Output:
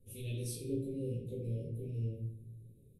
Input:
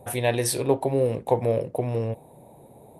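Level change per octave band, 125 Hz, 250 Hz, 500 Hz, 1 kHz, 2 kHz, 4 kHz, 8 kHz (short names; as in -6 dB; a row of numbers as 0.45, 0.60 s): -8.0 dB, -11.5 dB, -19.5 dB, under -40 dB, under -20 dB, under -15 dB, -17.0 dB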